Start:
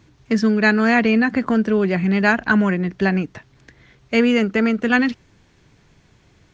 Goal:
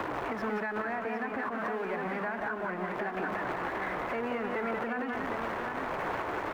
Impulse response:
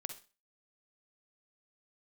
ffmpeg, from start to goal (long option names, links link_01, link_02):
-filter_complex "[0:a]aeval=exprs='val(0)+0.5*0.15*sgn(val(0))':channel_layout=same,equalizer=frequency=1100:width=0.66:gain=8,acrossover=split=230|1300[link_01][link_02][link_03];[link_01]acompressor=threshold=-30dB:ratio=4[link_04];[link_02]acompressor=threshold=-24dB:ratio=4[link_05];[link_03]acompressor=threshold=-30dB:ratio=4[link_06];[link_04][link_05][link_06]amix=inputs=3:normalize=0,acrossover=split=300 2400:gain=0.2 1 0.1[link_07][link_08][link_09];[link_07][link_08][link_09]amix=inputs=3:normalize=0,aecho=1:1:184|759:0.531|0.473,asettb=1/sr,asplit=3[link_10][link_11][link_12];[link_10]atrim=end=0.824[link_13];[link_11]atrim=start=0.82:end=3.17,asetpts=PTS-STARTPTS,afade=type=in:duration=0.004:curve=qsin,afade=type=out:start_time=2.346:duration=0.004:curve=qsin,flanger=delay=2.2:depth=7.5:regen=-75:speed=1.7:shape=sinusoidal[link_14];[link_12]atrim=start=3.166[link_15];[link_13][link_14]acrossfade=duration=0.004:curve1=hsin:curve2=qsin[link_16];[link_16][link_15]acrossfade=duration=0.004:curve1=qsin:curve2=hsin,alimiter=limit=-21.5dB:level=0:latency=1:release=140,volume=-3dB"